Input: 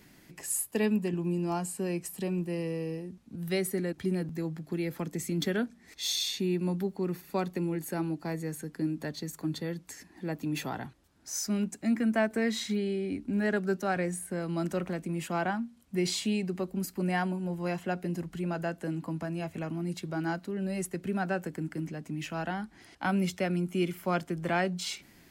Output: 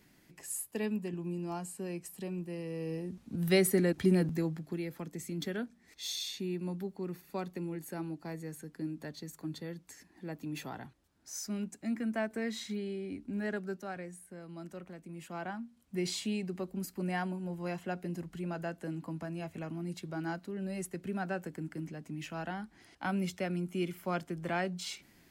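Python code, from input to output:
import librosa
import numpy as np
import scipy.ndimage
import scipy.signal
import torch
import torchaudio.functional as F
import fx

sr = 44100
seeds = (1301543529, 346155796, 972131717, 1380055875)

y = fx.gain(x, sr, db=fx.line((2.65, -7.0), (3.2, 4.0), (4.27, 4.0), (4.92, -7.0), (13.5, -7.0), (14.14, -14.0), (14.95, -14.0), (15.95, -5.0)))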